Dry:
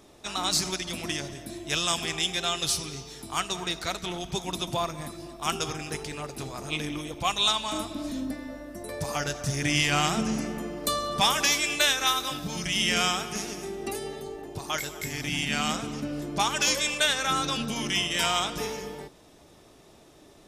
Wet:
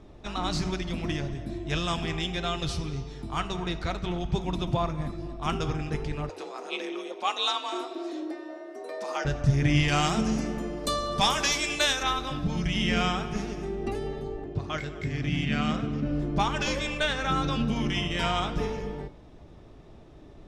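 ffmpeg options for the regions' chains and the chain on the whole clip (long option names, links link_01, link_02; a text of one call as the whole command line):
ffmpeg -i in.wav -filter_complex "[0:a]asettb=1/sr,asplit=3[link_01][link_02][link_03];[link_01]atrim=end=6.294[link_04];[link_02]atrim=start=6.29:end=9.25,asetpts=PTS-STARTPTS,afade=type=in:duration=0.004:curve=qsin,afade=type=out:start_time=2.956:duration=0.004:curve=qsin,highpass=frequency=300:width=0.5412,highpass=frequency=300:width=1.3066,equalizer=frequency=5900:width_type=o:width=1.8:gain=3.5,afreqshift=49[link_05];[link_03]atrim=start=9.246[link_06];[link_04][link_05]acrossfade=duration=0.004:curve1=hsin:curve2=qsin[link_07];[link_07][link_06]acrossfade=duration=0.004:curve1=qsin:curve2=hsin,asettb=1/sr,asplit=3[link_08][link_09][link_10];[link_08]atrim=end=9.884[link_11];[link_09]atrim=start=9.88:end=12.03,asetpts=PTS-STARTPTS,afade=type=in:duration=0.004:curve=qsin,afade=type=out:start_time=2.146:duration=0.004:curve=qsin,bass=frequency=250:gain=-6,treble=frequency=4000:gain=12,volume=7.5dB,asoftclip=hard,volume=-7.5dB[link_12];[link_10]atrim=start=12.026[link_13];[link_11][link_12]acrossfade=duration=0.004:curve1=hsin:curve2=qsin[link_14];[link_14][link_13]acrossfade=duration=0.004:curve1=qsin:curve2=hsin,asettb=1/sr,asplit=3[link_15][link_16][link_17];[link_15]atrim=end=14.444[link_18];[link_16]atrim=start=14.44:end=16.06,asetpts=PTS-STARTPTS,afade=type=in:duration=0.004:curve=qsin,afade=type=out:start_time=1.616:duration=0.004:curve=qsin,equalizer=frequency=880:width=4.6:gain=-8.5,adynamicsmooth=sensitivity=3.5:basefreq=6400,highpass=57[link_19];[link_17]atrim=start=16.056[link_20];[link_18][link_19]acrossfade=duration=0.004:curve1=hsin:curve2=qsin[link_21];[link_21][link_20]acrossfade=duration=0.004:curve1=qsin:curve2=hsin,lowpass=frequency=3900:poles=1,aemphasis=mode=reproduction:type=bsi,bandreject=frequency=95.88:width_type=h:width=4,bandreject=frequency=191.76:width_type=h:width=4,bandreject=frequency=287.64:width_type=h:width=4,bandreject=frequency=383.52:width_type=h:width=4,bandreject=frequency=479.4:width_type=h:width=4,bandreject=frequency=575.28:width_type=h:width=4,bandreject=frequency=671.16:width_type=h:width=4,bandreject=frequency=767.04:width_type=h:width=4,bandreject=frequency=862.92:width_type=h:width=4,bandreject=frequency=958.8:width_type=h:width=4,bandreject=frequency=1054.68:width_type=h:width=4,bandreject=frequency=1150.56:width_type=h:width=4,bandreject=frequency=1246.44:width_type=h:width=4,bandreject=frequency=1342.32:width_type=h:width=4,bandreject=frequency=1438.2:width_type=h:width=4,bandreject=frequency=1534.08:width_type=h:width=4,bandreject=frequency=1629.96:width_type=h:width=4,bandreject=frequency=1725.84:width_type=h:width=4,bandreject=frequency=1821.72:width_type=h:width=4,bandreject=frequency=1917.6:width_type=h:width=4,bandreject=frequency=2013.48:width_type=h:width=4,bandreject=frequency=2109.36:width_type=h:width=4,bandreject=frequency=2205.24:width_type=h:width=4,bandreject=frequency=2301.12:width_type=h:width=4,bandreject=frequency=2397:width_type=h:width=4,bandreject=frequency=2492.88:width_type=h:width=4,bandreject=frequency=2588.76:width_type=h:width=4,bandreject=frequency=2684.64:width_type=h:width=4,bandreject=frequency=2780.52:width_type=h:width=4,bandreject=frequency=2876.4:width_type=h:width=4,bandreject=frequency=2972.28:width_type=h:width=4" out.wav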